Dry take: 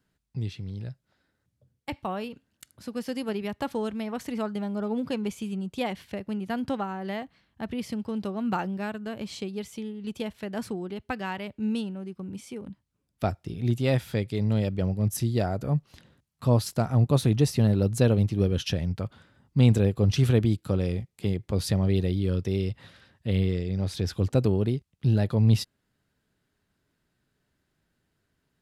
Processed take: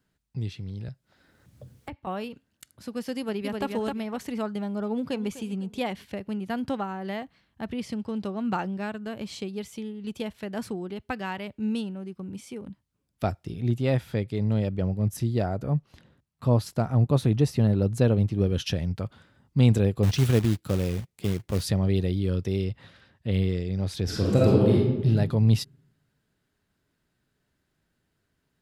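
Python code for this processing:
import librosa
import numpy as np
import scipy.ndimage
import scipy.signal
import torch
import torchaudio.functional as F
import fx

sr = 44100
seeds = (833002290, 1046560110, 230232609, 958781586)

y = fx.band_squash(x, sr, depth_pct=100, at=(0.88, 2.07))
y = fx.echo_throw(y, sr, start_s=3.18, length_s=0.48, ms=260, feedback_pct=20, wet_db=-3.5)
y = fx.echo_throw(y, sr, start_s=4.89, length_s=0.41, ms=250, feedback_pct=40, wet_db=-14.5)
y = fx.lowpass(y, sr, hz=10000.0, slope=12, at=(7.72, 9.02))
y = fx.high_shelf(y, sr, hz=3000.0, db=-7.0, at=(13.61, 18.47))
y = fx.quant_float(y, sr, bits=2, at=(20.03, 21.64))
y = fx.high_shelf(y, sr, hz=7100.0, db=-8.5, at=(22.64, 23.33))
y = fx.reverb_throw(y, sr, start_s=24.04, length_s=1.02, rt60_s=1.1, drr_db=-5.5)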